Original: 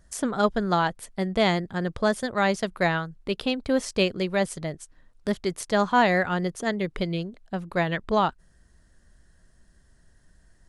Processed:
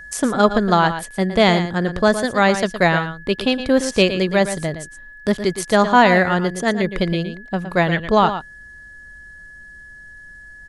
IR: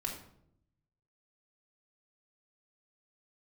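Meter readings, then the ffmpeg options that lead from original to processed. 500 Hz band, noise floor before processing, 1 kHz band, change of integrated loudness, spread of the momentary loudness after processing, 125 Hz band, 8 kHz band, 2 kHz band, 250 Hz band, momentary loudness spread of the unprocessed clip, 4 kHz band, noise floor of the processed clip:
+8.0 dB, -60 dBFS, +8.0 dB, +8.0 dB, 10 LU, +8.0 dB, +8.0 dB, +8.0 dB, +8.0 dB, 9 LU, +8.0 dB, -41 dBFS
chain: -af "aeval=exprs='val(0)+0.00708*sin(2*PI*1700*n/s)':c=same,aecho=1:1:115:0.299,volume=7.5dB"

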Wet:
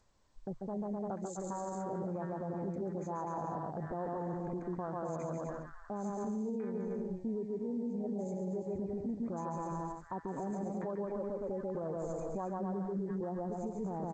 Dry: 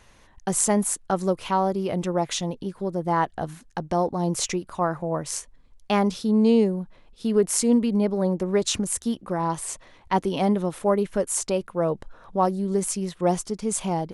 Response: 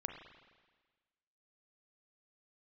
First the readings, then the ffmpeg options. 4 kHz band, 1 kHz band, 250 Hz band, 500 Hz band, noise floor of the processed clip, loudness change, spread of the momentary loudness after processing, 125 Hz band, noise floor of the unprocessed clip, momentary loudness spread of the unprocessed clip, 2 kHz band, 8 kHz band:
under -35 dB, -14.0 dB, -13.0 dB, -13.0 dB, -51 dBFS, -14.0 dB, 3 LU, -11.5 dB, -55 dBFS, 10 LU, -18.5 dB, -28.5 dB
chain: -filter_complex "[0:a]afwtdn=0.0501,bandreject=f=60:t=h:w=6,bandreject=f=120:t=h:w=6,asplit=2[a][b];[b]aecho=0:1:140|252|341.6|413.3|470.6:0.631|0.398|0.251|0.158|0.1[c];[a][c]amix=inputs=2:normalize=0,acompressor=threshold=-29dB:ratio=12,acrossover=split=1600[d][e];[e]adelay=700[f];[d][f]amix=inputs=2:normalize=0,alimiter=level_in=4.5dB:limit=-24dB:level=0:latency=1:release=21,volume=-4.5dB,areverse,acompressor=mode=upward:threshold=-55dB:ratio=2.5,areverse,afftfilt=real='re*(1-between(b*sr/4096,2500,6100))':imag='im*(1-between(b*sr/4096,2500,6100))':win_size=4096:overlap=0.75,volume=-2dB" -ar 16000 -c:a g722

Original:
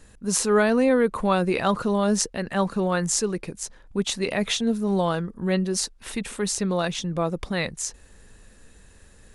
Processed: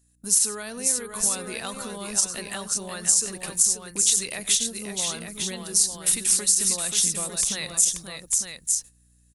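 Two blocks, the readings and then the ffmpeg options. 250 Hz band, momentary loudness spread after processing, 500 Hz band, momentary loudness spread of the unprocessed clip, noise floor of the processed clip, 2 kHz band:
-13.5 dB, 10 LU, -13.5 dB, 10 LU, -60 dBFS, -6.0 dB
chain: -af "agate=range=-26dB:threshold=-40dB:ratio=16:detection=peak,acompressor=threshold=-29dB:ratio=6,aeval=exprs='val(0)+0.00126*(sin(2*PI*60*n/s)+sin(2*PI*2*60*n/s)/2+sin(2*PI*3*60*n/s)/3+sin(2*PI*4*60*n/s)/4+sin(2*PI*5*60*n/s)/5)':c=same,crystalizer=i=1.5:c=0,aecho=1:1:94|532|900:0.133|0.473|0.447,crystalizer=i=6.5:c=0,alimiter=level_in=-0.5dB:limit=-1dB:release=50:level=0:latency=1,volume=-6dB"

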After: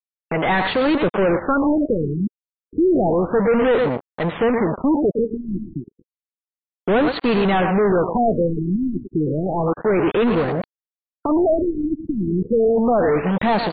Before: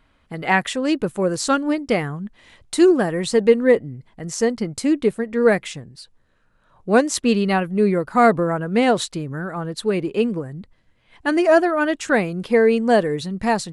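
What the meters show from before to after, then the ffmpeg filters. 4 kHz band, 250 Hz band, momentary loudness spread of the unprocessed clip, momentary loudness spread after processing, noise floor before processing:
-3.0 dB, +1.0 dB, 14 LU, 9 LU, -61 dBFS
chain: -filter_complex "[0:a]aecho=1:1:113|226:0.158|0.0269,aresample=16000,acrusher=bits=4:mix=0:aa=0.5,aresample=44100,asplit=2[a][b];[b]highpass=f=720:p=1,volume=37dB,asoftclip=type=tanh:threshold=-2dB[c];[a][c]amix=inputs=2:normalize=0,lowpass=f=1.3k:p=1,volume=-6dB,afftfilt=real='re*lt(b*sr/1024,360*pow(4700/360,0.5+0.5*sin(2*PI*0.31*pts/sr)))':imag='im*lt(b*sr/1024,360*pow(4700/360,0.5+0.5*sin(2*PI*0.31*pts/sr)))':win_size=1024:overlap=0.75,volume=-7dB"

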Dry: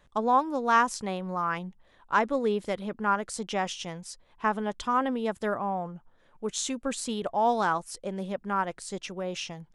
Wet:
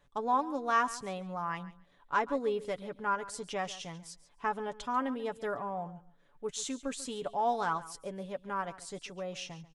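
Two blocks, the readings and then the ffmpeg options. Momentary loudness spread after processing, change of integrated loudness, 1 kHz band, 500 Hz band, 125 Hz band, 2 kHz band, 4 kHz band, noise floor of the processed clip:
12 LU, -5.5 dB, -5.5 dB, -5.5 dB, -7.0 dB, -6.0 dB, -6.0 dB, -64 dBFS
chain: -filter_complex "[0:a]aecho=1:1:7:0.51,asplit=2[a][b];[b]aecho=0:1:140|280:0.141|0.0226[c];[a][c]amix=inputs=2:normalize=0,volume=-7dB"

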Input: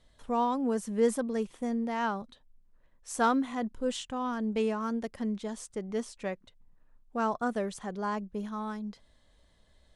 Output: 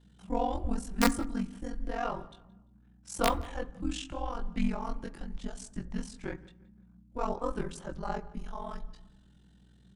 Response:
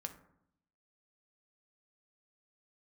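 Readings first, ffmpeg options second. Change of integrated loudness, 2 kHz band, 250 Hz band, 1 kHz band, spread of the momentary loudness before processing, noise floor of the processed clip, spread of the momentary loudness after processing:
-3.0 dB, -1.5 dB, -3.5 dB, -3.5 dB, 11 LU, -60 dBFS, 13 LU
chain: -filter_complex "[0:a]flanger=delay=17:depth=6.3:speed=0.89,aeval=exprs='(mod(7.08*val(0)+1,2)-1)/7.08':c=same,aeval=exprs='val(0)*sin(2*PI*22*n/s)':c=same,asplit=2[a][b];[b]adelay=172,lowpass=f=3.9k:p=1,volume=-21dB,asplit=2[c][d];[d]adelay=172,lowpass=f=3.9k:p=1,volume=0.36,asplit=2[e][f];[f]adelay=172,lowpass=f=3.9k:p=1,volume=0.36[g];[a][c][e][g]amix=inputs=4:normalize=0,afreqshift=-220,asplit=2[h][i];[1:a]atrim=start_sample=2205[j];[i][j]afir=irnorm=-1:irlink=0,volume=-1.5dB[k];[h][k]amix=inputs=2:normalize=0,aeval=exprs='val(0)+0.001*(sin(2*PI*60*n/s)+sin(2*PI*2*60*n/s)/2+sin(2*PI*3*60*n/s)/3+sin(2*PI*4*60*n/s)/4+sin(2*PI*5*60*n/s)/5)':c=same"

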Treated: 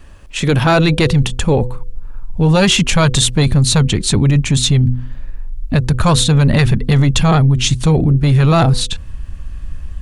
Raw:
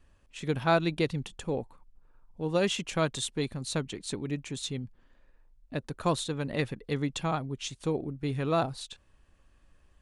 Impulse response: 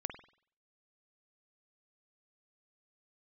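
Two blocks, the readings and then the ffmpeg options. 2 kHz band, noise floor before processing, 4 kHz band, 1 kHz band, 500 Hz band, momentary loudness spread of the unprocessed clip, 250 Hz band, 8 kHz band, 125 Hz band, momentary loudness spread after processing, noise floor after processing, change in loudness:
+16.0 dB, -63 dBFS, +19.5 dB, +13.5 dB, +12.5 dB, 11 LU, +18.0 dB, +20.0 dB, +23.5 dB, 20 LU, -29 dBFS, +18.5 dB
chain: -af "bandreject=f=124.3:t=h:w=4,bandreject=f=248.6:t=h:w=4,bandreject=f=372.9:t=h:w=4,bandreject=f=497.2:t=h:w=4,asubboost=boost=6:cutoff=170,apsyclip=28.5dB,volume=-7dB"

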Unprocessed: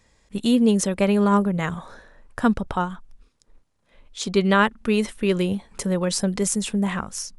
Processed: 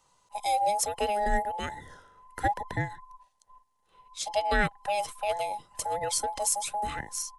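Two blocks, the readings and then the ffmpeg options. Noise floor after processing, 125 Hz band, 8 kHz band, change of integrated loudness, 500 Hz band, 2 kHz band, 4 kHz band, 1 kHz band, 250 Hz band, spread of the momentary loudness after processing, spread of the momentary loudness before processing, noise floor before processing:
-72 dBFS, -13.0 dB, -2.0 dB, -7.5 dB, -8.0 dB, -5.0 dB, -6.0 dB, 0.0 dB, -22.0 dB, 10 LU, 11 LU, -66 dBFS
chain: -filter_complex "[0:a]afftfilt=real='real(if(between(b,1,1008),(2*floor((b-1)/48)+1)*48-b,b),0)':imag='imag(if(between(b,1,1008),(2*floor((b-1)/48)+1)*48-b,b),0)*if(between(b,1,1008),-1,1)':win_size=2048:overlap=0.75,adynamicequalizer=threshold=0.01:dfrequency=960:dqfactor=6:tfrequency=960:tqfactor=6:attack=5:release=100:ratio=0.375:range=4:mode=cutabove:tftype=bell,acrossover=split=190[a][b];[a]acontrast=47[c];[b]highshelf=f=6.6k:g=11[d];[c][d]amix=inputs=2:normalize=0,aresample=32000,aresample=44100,volume=-8.5dB"

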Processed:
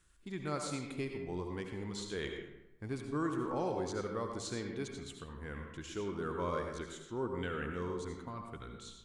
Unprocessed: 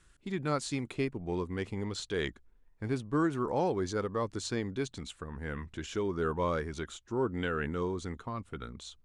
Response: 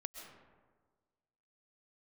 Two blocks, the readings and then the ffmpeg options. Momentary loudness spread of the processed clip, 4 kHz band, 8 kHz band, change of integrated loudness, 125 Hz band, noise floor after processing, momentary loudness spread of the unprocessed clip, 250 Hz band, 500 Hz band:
10 LU, -4.5 dB, -3.0 dB, -5.0 dB, -6.0 dB, -58 dBFS, 10 LU, -5.5 dB, -5.0 dB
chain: -filter_complex "[0:a]highshelf=f=8.8k:g=8[a];[1:a]atrim=start_sample=2205,asetrate=74970,aresample=44100[b];[a][b]afir=irnorm=-1:irlink=0,volume=2dB"

